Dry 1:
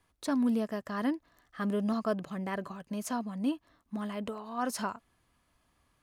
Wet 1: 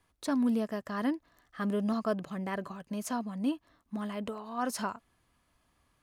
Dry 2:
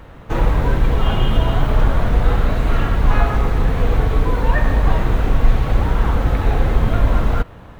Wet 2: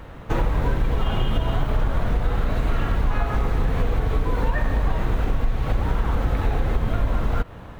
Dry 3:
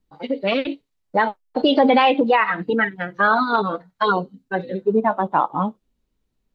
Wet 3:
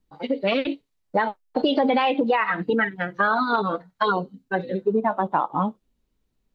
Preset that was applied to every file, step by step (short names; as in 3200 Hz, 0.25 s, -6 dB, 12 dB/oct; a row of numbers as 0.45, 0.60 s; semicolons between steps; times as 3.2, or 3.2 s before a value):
compressor 5:1, threshold -17 dBFS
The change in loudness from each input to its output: 0.0, -6.0, -3.5 LU